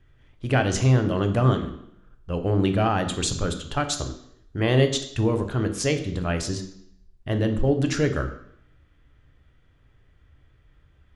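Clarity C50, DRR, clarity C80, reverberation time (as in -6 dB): 10.5 dB, 6.5 dB, 13.0 dB, 0.70 s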